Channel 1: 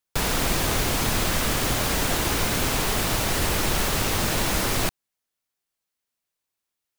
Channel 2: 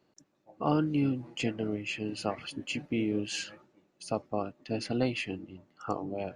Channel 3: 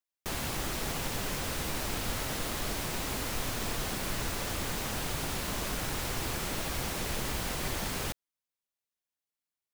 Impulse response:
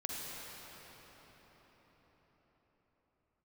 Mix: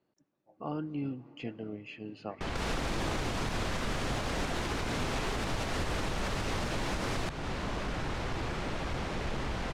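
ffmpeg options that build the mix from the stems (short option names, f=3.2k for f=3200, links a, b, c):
-filter_complex "[0:a]adelay=2400,volume=-1dB[a];[1:a]acrossover=split=4600[b][c];[c]acompressor=threshold=-57dB:ratio=4:attack=1:release=60[d];[b][d]amix=inputs=2:normalize=0,volume=-8dB,asplit=2[e][f];[f]volume=-21dB[g];[2:a]asoftclip=type=hard:threshold=-29.5dB,lowpass=f=3.7k:p=1,adelay=2150,volume=2dB[h];[3:a]atrim=start_sample=2205[i];[g][i]afir=irnorm=-1:irlink=0[j];[a][e][h][j]amix=inputs=4:normalize=0,lowpass=7.2k,highshelf=f=3.4k:g=-7,alimiter=limit=-23.5dB:level=0:latency=1:release=204"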